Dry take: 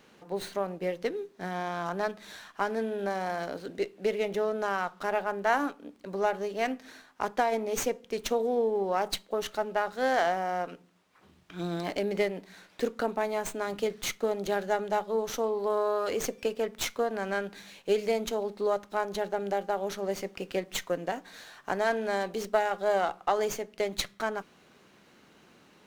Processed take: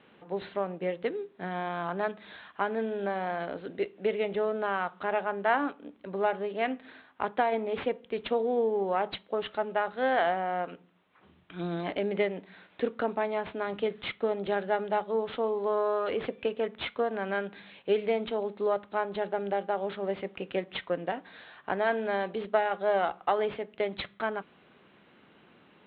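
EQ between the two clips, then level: HPF 58 Hz; steep low-pass 3700 Hz 72 dB/oct; 0.0 dB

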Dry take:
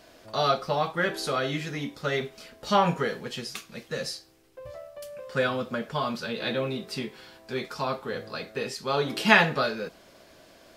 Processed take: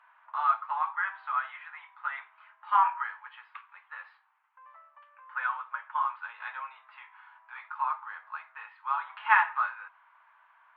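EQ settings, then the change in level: Gaussian blur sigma 4.5 samples; Chebyshev high-pass 910 Hz, order 6; tilt -4.5 dB/oct; +6.5 dB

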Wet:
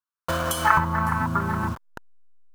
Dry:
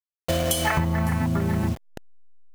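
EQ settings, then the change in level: band shelf 1200 Hz +15.5 dB 1 oct; -4.0 dB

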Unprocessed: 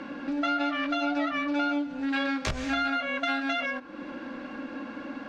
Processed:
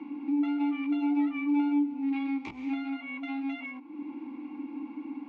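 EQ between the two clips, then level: vowel filter u; +5.0 dB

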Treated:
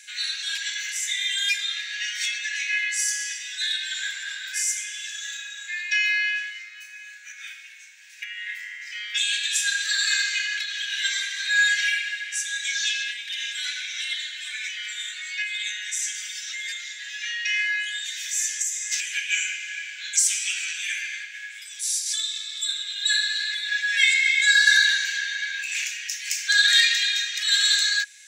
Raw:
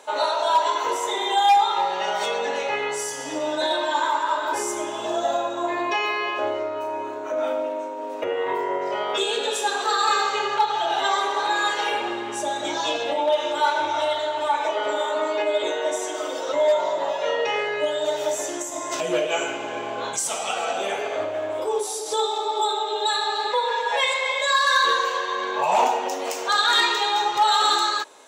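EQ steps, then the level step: rippled Chebyshev high-pass 1600 Hz, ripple 6 dB; +8.0 dB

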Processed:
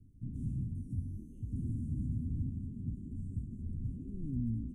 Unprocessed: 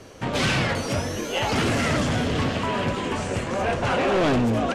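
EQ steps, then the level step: elliptic band-stop 270–9600 Hz, stop band 40 dB; air absorption 74 m; passive tone stack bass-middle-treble 10-0-1; +3.5 dB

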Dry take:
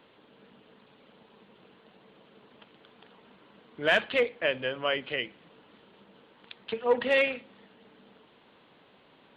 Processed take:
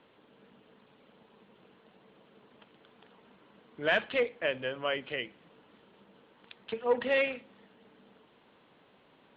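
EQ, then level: air absorption 130 m; -2.5 dB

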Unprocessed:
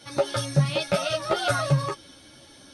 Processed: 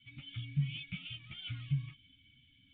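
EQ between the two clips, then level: vocal tract filter i; Chebyshev band-stop 110–1900 Hz, order 2; +4.0 dB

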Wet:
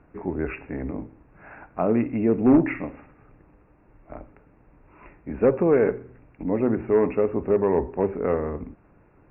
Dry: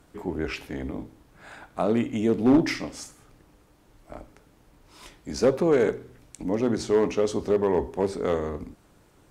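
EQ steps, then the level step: brick-wall FIR low-pass 2800 Hz; air absorption 310 m; +2.5 dB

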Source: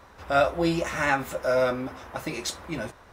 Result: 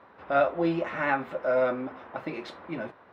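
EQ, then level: HPF 190 Hz 12 dB/oct; air absorption 410 m; 0.0 dB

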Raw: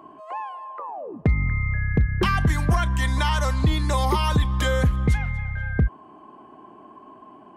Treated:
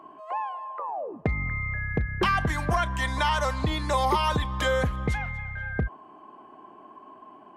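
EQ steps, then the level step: high shelf 6000 Hz -7 dB; dynamic EQ 660 Hz, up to +4 dB, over -40 dBFS, Q 1.2; low shelf 320 Hz -9 dB; 0.0 dB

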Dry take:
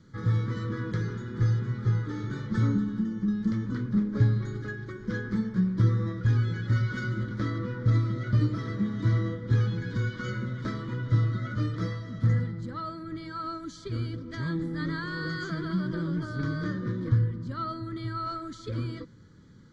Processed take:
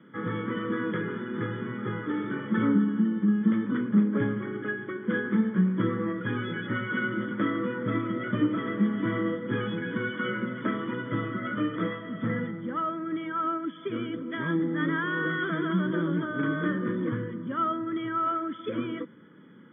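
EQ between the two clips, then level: HPF 200 Hz 24 dB/oct; brick-wall FIR low-pass 3500 Hz; +6.5 dB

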